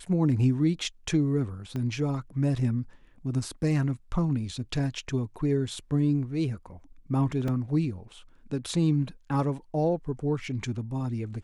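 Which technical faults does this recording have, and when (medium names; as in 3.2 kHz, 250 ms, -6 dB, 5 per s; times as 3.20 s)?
1.76 s: pop -22 dBFS
7.48 s: dropout 2.7 ms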